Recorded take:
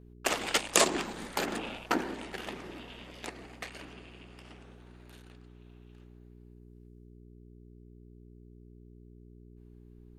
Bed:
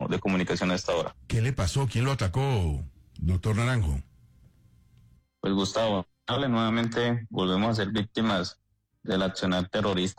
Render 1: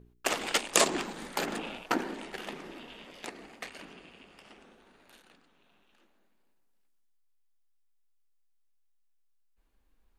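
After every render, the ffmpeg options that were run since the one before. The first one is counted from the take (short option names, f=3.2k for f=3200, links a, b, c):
-af "bandreject=f=60:t=h:w=4,bandreject=f=120:t=h:w=4,bandreject=f=180:t=h:w=4,bandreject=f=240:t=h:w=4,bandreject=f=300:t=h:w=4,bandreject=f=360:t=h:w=4,bandreject=f=420:t=h:w=4"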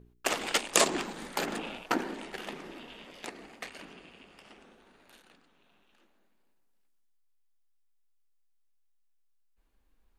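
-af anull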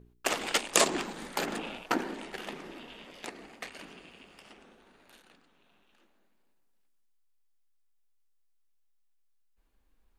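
-filter_complex "[0:a]asettb=1/sr,asplit=3[a][b][c];[a]atrim=end=3.794[d];[b]atrim=start=3.79:end=4.53,asetpts=PTS-STARTPTS,afade=t=in:d=0.004:c=qsin,afade=t=out:st=0.736:d=0.004:c=qsin,highshelf=f=4.7k:g=4.5[e];[c]atrim=start=4.526[f];[d][e]acrossfade=d=0.004:c1=hsin:c2=qsin[g];[g][f]acrossfade=d=0.004:c1=qsin:c2=hsin"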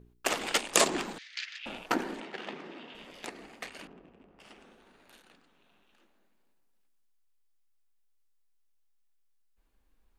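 -filter_complex "[0:a]asettb=1/sr,asplit=3[a][b][c];[a]atrim=end=1.184[d];[b]atrim=start=1.18:end=1.66,asetpts=PTS-STARTPTS,afade=t=in:d=0.004:c=qsin,afade=t=out:st=0.476:d=0.004:c=qsin,asuperpass=centerf=3300:order=8:qfactor=0.82[e];[c]atrim=start=1.656[f];[d][e]acrossfade=d=0.004:c1=hsin:c2=qsin[g];[g][f]acrossfade=d=0.004:c1=qsin:c2=hsin,asettb=1/sr,asplit=3[h][i][j];[h]atrim=end=2.204[k];[i]atrim=start=2.2:end=2.95,asetpts=PTS-STARTPTS,afade=t=in:d=0.004:c=qsin,afade=t=out:st=0.746:d=0.004:c=qsin,highpass=150,lowpass=4.5k[l];[j]atrim=start=2.946[m];[k][l]acrossfade=d=0.004:c1=hsin:c2=qsin[n];[n][m]acrossfade=d=0.004:c1=qsin:c2=hsin,asettb=1/sr,asplit=3[o][p][q];[o]atrim=end=3.874[r];[p]atrim=start=3.87:end=4.4,asetpts=PTS-STARTPTS,afade=t=in:d=0.004:c=qsin,afade=t=out:st=0.526:d=0.004:c=qsin,adynamicsmooth=sensitivity=7:basefreq=730[s];[q]atrim=start=4.396[t];[r][s]acrossfade=d=0.004:c1=hsin:c2=qsin[u];[u][t]acrossfade=d=0.004:c1=qsin:c2=hsin"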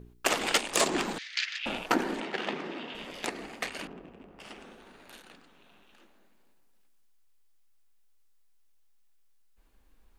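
-af "acontrast=90,alimiter=limit=-12dB:level=0:latency=1:release=374"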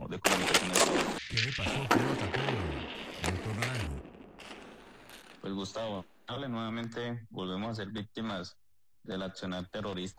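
-filter_complex "[1:a]volume=-11dB[a];[0:a][a]amix=inputs=2:normalize=0"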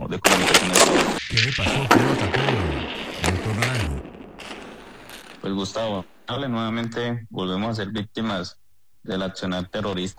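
-af "volume=11dB,alimiter=limit=-1dB:level=0:latency=1"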